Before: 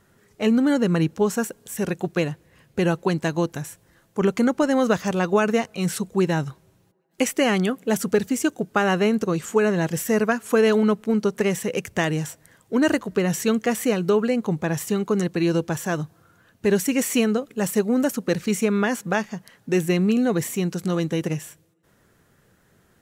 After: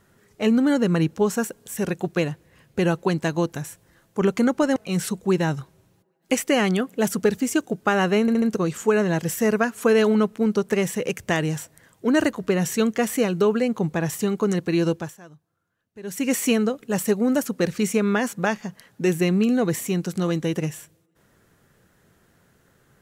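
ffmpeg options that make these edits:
-filter_complex "[0:a]asplit=7[s0][s1][s2][s3][s4][s5][s6];[s0]atrim=end=4.762[s7];[s1]atrim=start=5.648:end=9.172[s8];[s2]atrim=start=9.098:end=9.172[s9];[s3]atrim=start=9.098:end=9.172[s10];[s4]atrim=start=9.098:end=15.85,asetpts=PTS-STARTPTS,afade=t=out:st=6.482:d=0.27:silence=0.0944061[s11];[s5]atrim=start=15.85:end=16.71,asetpts=PTS-STARTPTS,volume=0.0944[s12];[s6]atrim=start=16.71,asetpts=PTS-STARTPTS,afade=t=in:d=0.27:silence=0.0944061[s13];[s7][s8]acrossfade=d=0.004:c1=hsin:c2=hsin[s14];[s14][s9]acrossfade=d=0.004:c1=hsin:c2=hsin[s15];[s15][s10]acrossfade=d=0.004:c1=hsin:c2=hsin[s16];[s11][s12][s13]concat=n=3:v=0:a=1[s17];[s16][s17]acrossfade=d=0.004:c1=hsin:c2=hsin"

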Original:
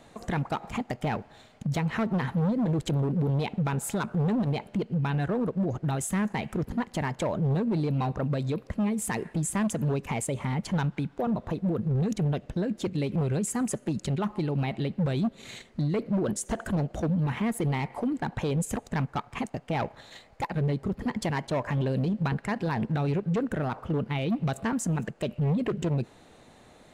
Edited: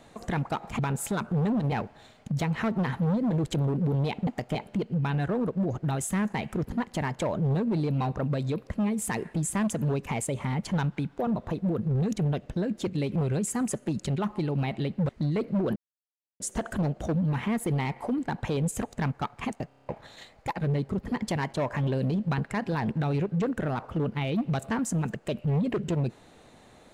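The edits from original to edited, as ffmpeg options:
-filter_complex "[0:a]asplit=14[s0][s1][s2][s3][s4][s5][s6][s7][s8][s9][s10][s11][s12][s13];[s0]atrim=end=0.792[s14];[s1]atrim=start=3.618:end=4.552[s15];[s2]atrim=start=1.068:end=3.622[s16];[s3]atrim=start=0.788:end=1.072[s17];[s4]atrim=start=4.548:end=15.092[s18];[s5]atrim=start=15.668:end=16.34,asetpts=PTS-STARTPTS,afade=t=out:st=0.668:d=0.004:c=hsin,apad=pad_dur=0.64[s19];[s6]atrim=start=16.34:end=19.652,asetpts=PTS-STARTPTS,afade=t=in:d=0.004:c=hsin[s20];[s7]atrim=start=19.618:end=19.652[s21];[s8]atrim=start=19.618:end=19.652[s22];[s9]atrim=start=19.618:end=19.652[s23];[s10]atrim=start=19.618:end=19.652[s24];[s11]atrim=start=19.618:end=19.652[s25];[s12]atrim=start=19.618:end=19.652[s26];[s13]atrim=start=19.828[s27];[s14][s15]acrossfade=d=0.004:c1=hsin:c2=hsin[s28];[s28][s16]acrossfade=d=0.004:c1=hsin:c2=hsin[s29];[s29][s17]acrossfade=d=0.004:c1=hsin:c2=hsin[s30];[s30][s18]acrossfade=d=0.004:c1=hsin:c2=hsin[s31];[s19][s20]concat=n=2:v=0:a=1[s32];[s31][s32]acrossfade=d=0.004:c1=hsin:c2=hsin[s33];[s33][s21]acrossfade=d=0.004:c1=hsin:c2=hsin[s34];[s34][s22]acrossfade=d=0.004:c1=hsin:c2=hsin[s35];[s35][s23]acrossfade=d=0.004:c1=hsin:c2=hsin[s36];[s36][s24]acrossfade=d=0.004:c1=hsin:c2=hsin[s37];[s37][s25]acrossfade=d=0.004:c1=hsin:c2=hsin[s38];[s38][s26]acrossfade=d=0.004:c1=hsin:c2=hsin[s39];[s39][s27]acrossfade=d=0.004:c1=hsin:c2=hsin"

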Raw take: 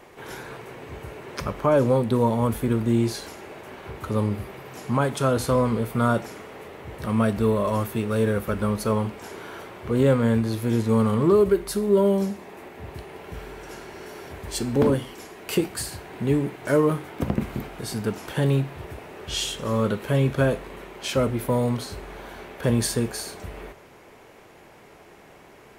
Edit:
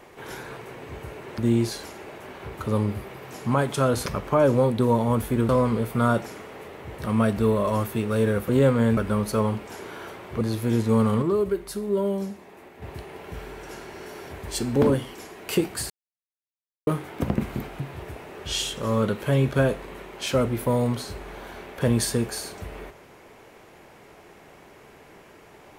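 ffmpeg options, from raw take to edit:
-filter_complex "[0:a]asplit=12[s0][s1][s2][s3][s4][s5][s6][s7][s8][s9][s10][s11];[s0]atrim=end=1.382[s12];[s1]atrim=start=2.808:end=5.492[s13];[s2]atrim=start=1.378:end=2.812[s14];[s3]atrim=start=5.488:end=8.492[s15];[s4]atrim=start=9.928:end=10.412[s16];[s5]atrim=start=8.488:end=9.932[s17];[s6]atrim=start=10.408:end=11.222[s18];[s7]atrim=start=11.218:end=12.822,asetpts=PTS-STARTPTS,volume=0.531[s19];[s8]atrim=start=12.818:end=15.9,asetpts=PTS-STARTPTS,afade=t=out:st=3.078:d=0.004:c=hsin[s20];[s9]atrim=start=15.9:end=16.87,asetpts=PTS-STARTPTS,volume=0[s21];[s10]atrim=start=16.87:end=17.802,asetpts=PTS-STARTPTS,afade=t=in:d=0.004:c=hsin[s22];[s11]atrim=start=18.618[s23];[s12][s13]acrossfade=d=0.004:c1=hsin:c2=hsin[s24];[s24][s14]acrossfade=d=0.004:c1=hsin:c2=hsin[s25];[s25][s15]acrossfade=d=0.004:c1=hsin:c2=hsin[s26];[s26][s16]acrossfade=d=0.004:c1=hsin:c2=hsin[s27];[s27][s17]acrossfade=d=0.004:c1=hsin:c2=hsin[s28];[s28][s18]acrossfade=d=0.004:c1=hsin:c2=hsin[s29];[s29][s19]acrossfade=d=0.004:c1=hsin:c2=hsin[s30];[s20][s21][s22]concat=n=3:v=0:a=1[s31];[s30][s31]acrossfade=d=0.004:c1=hsin:c2=hsin[s32];[s32][s23]acrossfade=d=0.004:c1=hsin:c2=hsin"

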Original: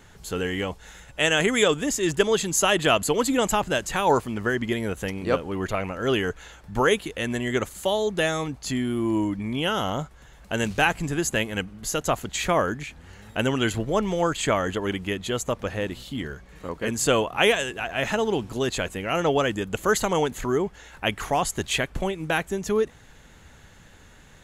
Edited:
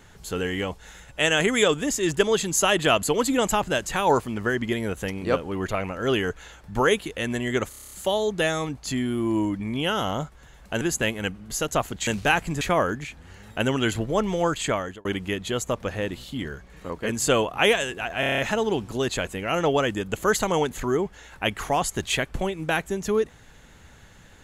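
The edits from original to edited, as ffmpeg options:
-filter_complex "[0:a]asplit=18[s0][s1][s2][s3][s4][s5][s6][s7][s8][s9][s10][s11][s12][s13][s14][s15][s16][s17];[s0]atrim=end=7.732[s18];[s1]atrim=start=7.698:end=7.732[s19];[s2]atrim=start=7.698:end=7.732[s20];[s3]atrim=start=7.698:end=7.732[s21];[s4]atrim=start=7.698:end=7.732[s22];[s5]atrim=start=7.698:end=7.732[s23];[s6]atrim=start=7.698:end=7.732[s24];[s7]atrim=start=7.698:end=10.602[s25];[s8]atrim=start=11.138:end=12.402[s26];[s9]atrim=start=10.598:end=11.142[s27];[s10]atrim=start=12.398:end=14.84,asetpts=PTS-STARTPTS,afade=t=out:st=1.842:d=0.6:c=qsin[s28];[s11]atrim=start=14.84:end=18.022,asetpts=PTS-STARTPTS,afade=t=in:d=0.004:c=hsin[s29];[s12]atrim=start=17.988:end=18.022[s30];[s13]atrim=start=17.988:end=18.022[s31];[s14]atrim=start=17.988:end=18.022[s32];[s15]atrim=start=17.988:end=18.022[s33];[s16]atrim=start=17.988:end=18.022[s34];[s17]atrim=start=17.988[s35];[s18][s19]acrossfade=d=0.004:c1=hsin:c2=hsin[s36];[s36][s20]acrossfade=d=0.004:c1=hsin:c2=hsin[s37];[s37][s21]acrossfade=d=0.004:c1=hsin:c2=hsin[s38];[s38][s22]acrossfade=d=0.004:c1=hsin:c2=hsin[s39];[s39][s23]acrossfade=d=0.004:c1=hsin:c2=hsin[s40];[s40][s24]acrossfade=d=0.004:c1=hsin:c2=hsin[s41];[s41][s25]acrossfade=d=0.004:c1=hsin:c2=hsin[s42];[s42][s26]acrossfade=d=0.004:c1=hsin:c2=hsin[s43];[s43][s27]acrossfade=d=0.004:c1=hsin:c2=hsin[s44];[s28][s29]concat=n=2:v=0:a=1[s45];[s44][s45]acrossfade=d=0.004:c1=hsin:c2=hsin[s46];[s46][s30]acrossfade=d=0.004:c1=hsin:c2=hsin[s47];[s47][s31]acrossfade=d=0.004:c1=hsin:c2=hsin[s48];[s48][s32]acrossfade=d=0.004:c1=hsin:c2=hsin[s49];[s49][s33]acrossfade=d=0.004:c1=hsin:c2=hsin[s50];[s50][s34]acrossfade=d=0.004:c1=hsin:c2=hsin[s51];[s51][s35]acrossfade=d=0.004:c1=hsin:c2=hsin"

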